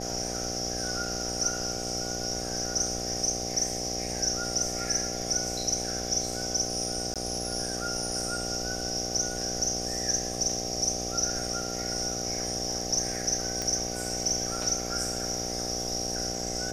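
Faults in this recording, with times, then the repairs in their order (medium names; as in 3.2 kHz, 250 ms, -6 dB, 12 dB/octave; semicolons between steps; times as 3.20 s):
buzz 60 Hz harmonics 13 -36 dBFS
7.14–7.16 s: dropout 17 ms
13.62 s: pop -17 dBFS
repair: de-click; de-hum 60 Hz, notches 13; interpolate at 7.14 s, 17 ms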